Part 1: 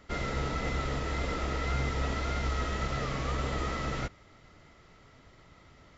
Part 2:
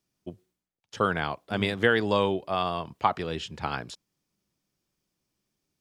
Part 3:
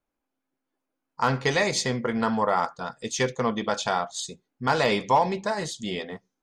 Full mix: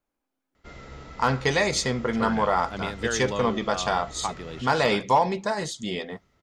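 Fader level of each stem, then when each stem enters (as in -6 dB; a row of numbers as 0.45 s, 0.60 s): -10.5 dB, -6.5 dB, +0.5 dB; 0.55 s, 1.20 s, 0.00 s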